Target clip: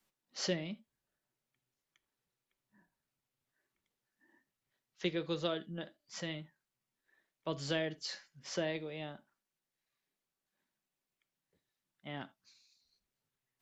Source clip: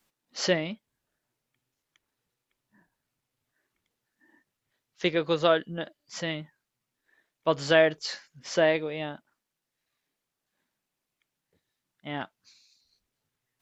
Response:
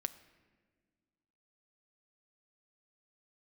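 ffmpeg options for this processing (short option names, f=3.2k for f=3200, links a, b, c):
-filter_complex "[0:a]acrossover=split=400|3000[a][b][c];[b]acompressor=threshold=-40dB:ratio=2[d];[a][d][c]amix=inputs=3:normalize=0[e];[1:a]atrim=start_sample=2205,atrim=end_sample=3969[f];[e][f]afir=irnorm=-1:irlink=0,volume=-6dB"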